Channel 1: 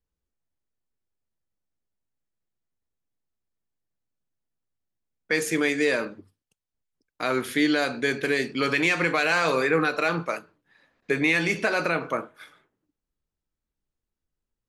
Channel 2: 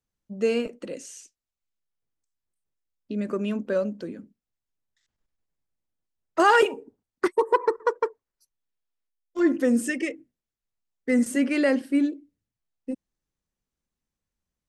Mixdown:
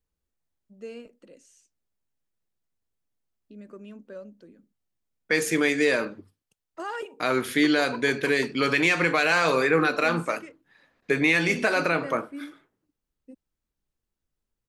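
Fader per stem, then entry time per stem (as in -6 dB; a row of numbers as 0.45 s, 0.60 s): +1.0 dB, -16.0 dB; 0.00 s, 0.40 s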